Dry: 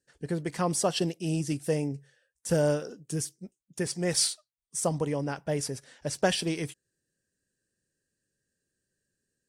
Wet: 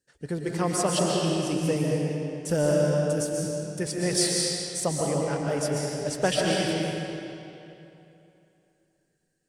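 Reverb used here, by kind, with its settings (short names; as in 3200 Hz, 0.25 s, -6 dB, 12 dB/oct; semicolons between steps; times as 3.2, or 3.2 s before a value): digital reverb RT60 2.9 s, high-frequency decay 0.8×, pre-delay 95 ms, DRR -2.5 dB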